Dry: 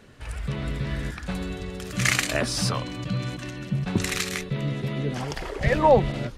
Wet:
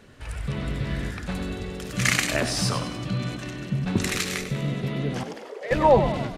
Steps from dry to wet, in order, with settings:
0:05.23–0:05.71: four-pole ladder high-pass 410 Hz, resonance 60%
echo with shifted repeats 96 ms, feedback 49%, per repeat +46 Hz, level −10 dB

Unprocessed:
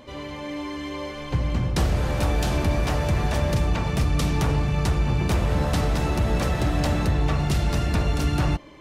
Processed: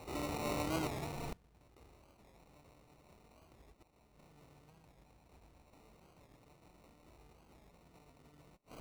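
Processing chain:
compressing power law on the bin magnitudes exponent 0.59
0:03.72–0:04.16: tuned comb filter 210 Hz, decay 1.2 s, mix 50%
harmonic generator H 8 −32 dB, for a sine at −7 dBFS
flanger 0.55 Hz, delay 2 ms, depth 5.7 ms, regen +35%
gate with flip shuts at −23 dBFS, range −36 dB
0:00.88–0:01.60: linear-phase brick-wall band-stop 230–1,800 Hz
0:04.79–0:05.73: parametric band 390 Hz −13.5 dB 0.62 octaves
decimation without filtering 27×
wow of a warped record 45 rpm, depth 160 cents
level −1 dB

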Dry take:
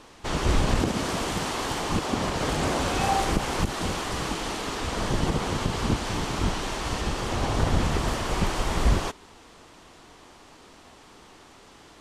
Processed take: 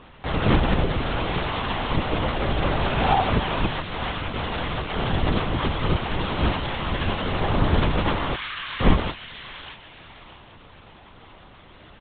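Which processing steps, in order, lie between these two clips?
0:03.77–0:04.96: compressor whose output falls as the input rises −31 dBFS, ratio −0.5
0:08.33–0:08.81: high-pass filter 1,400 Hz 24 dB per octave
double-tracking delay 19 ms −4.5 dB
delay with a high-pass on its return 626 ms, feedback 33%, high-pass 1,800 Hz, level −4.5 dB
linear-prediction vocoder at 8 kHz whisper
level +2 dB

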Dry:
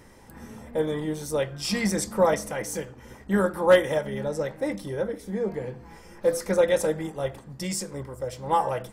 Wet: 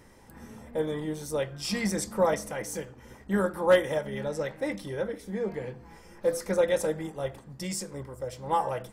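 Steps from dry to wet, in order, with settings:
0:04.12–0:05.73: dynamic equaliser 2,600 Hz, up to +5 dB, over −48 dBFS, Q 0.71
level −3.5 dB

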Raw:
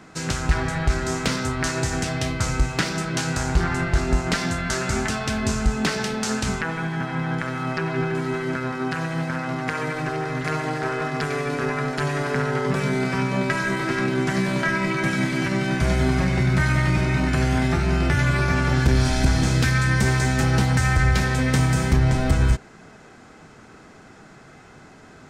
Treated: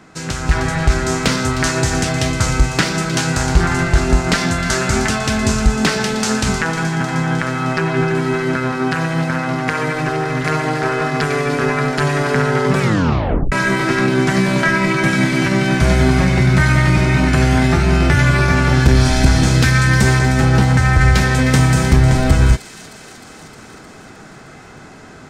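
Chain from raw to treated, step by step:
0:20.19–0:21.01: high-shelf EQ 3,900 Hz −10 dB
delay with a high-pass on its return 309 ms, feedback 69%, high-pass 3,300 Hz, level −10 dB
automatic gain control gain up to 6.5 dB
0:12.80: tape stop 0.72 s
level +1.5 dB

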